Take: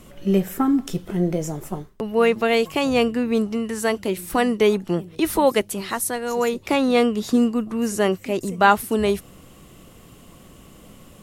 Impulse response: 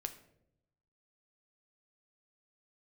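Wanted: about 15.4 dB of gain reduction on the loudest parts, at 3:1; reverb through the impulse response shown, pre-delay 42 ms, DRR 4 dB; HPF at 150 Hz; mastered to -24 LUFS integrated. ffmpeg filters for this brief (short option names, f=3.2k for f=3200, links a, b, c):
-filter_complex "[0:a]highpass=150,acompressor=threshold=-34dB:ratio=3,asplit=2[a][b];[1:a]atrim=start_sample=2205,adelay=42[c];[b][c]afir=irnorm=-1:irlink=0,volume=-2.5dB[d];[a][d]amix=inputs=2:normalize=0,volume=9dB"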